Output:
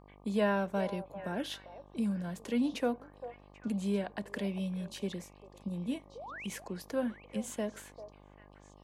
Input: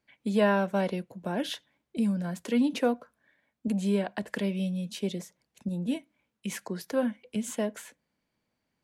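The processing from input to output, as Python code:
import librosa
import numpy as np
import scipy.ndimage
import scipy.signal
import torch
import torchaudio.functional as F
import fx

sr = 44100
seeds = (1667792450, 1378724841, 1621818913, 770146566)

p1 = fx.spec_paint(x, sr, seeds[0], shape='rise', start_s=6.15, length_s=0.32, low_hz=420.0, high_hz=3300.0, level_db=-39.0)
p2 = fx.dmg_buzz(p1, sr, base_hz=50.0, harmonics=24, level_db=-52.0, tilt_db=-3, odd_only=False)
p3 = p2 + fx.echo_stepped(p2, sr, ms=395, hz=670.0, octaves=1.4, feedback_pct=70, wet_db=-9.5, dry=0)
y = p3 * librosa.db_to_amplitude(-5.5)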